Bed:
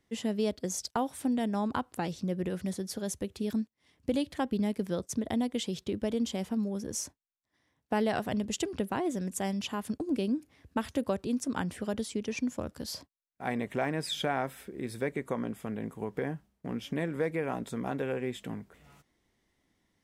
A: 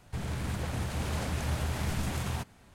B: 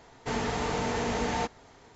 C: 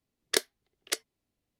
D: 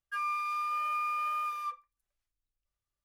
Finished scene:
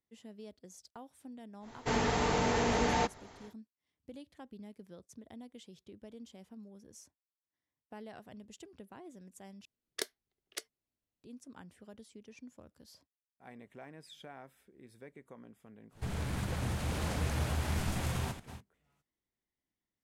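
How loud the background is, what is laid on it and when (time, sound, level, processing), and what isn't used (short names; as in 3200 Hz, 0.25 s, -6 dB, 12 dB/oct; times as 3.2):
bed -19.5 dB
1.6 add B, fades 0.10 s
9.65 replace with C -11 dB
15.89 add A -2 dB, fades 0.10 s + reverse delay 0.209 s, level -10.5 dB
not used: D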